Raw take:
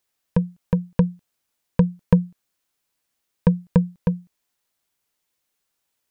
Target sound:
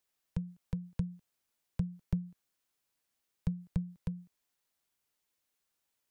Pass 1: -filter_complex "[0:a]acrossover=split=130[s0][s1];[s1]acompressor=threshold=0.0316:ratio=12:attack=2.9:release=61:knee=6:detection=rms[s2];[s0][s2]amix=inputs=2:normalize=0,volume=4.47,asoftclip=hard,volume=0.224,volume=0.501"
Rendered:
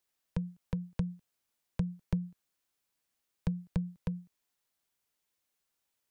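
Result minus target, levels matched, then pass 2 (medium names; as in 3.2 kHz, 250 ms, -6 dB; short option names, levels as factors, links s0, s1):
compression: peak gain reduction -7.5 dB
-filter_complex "[0:a]acrossover=split=130[s0][s1];[s1]acompressor=threshold=0.0126:ratio=12:attack=2.9:release=61:knee=6:detection=rms[s2];[s0][s2]amix=inputs=2:normalize=0,volume=4.47,asoftclip=hard,volume=0.224,volume=0.501"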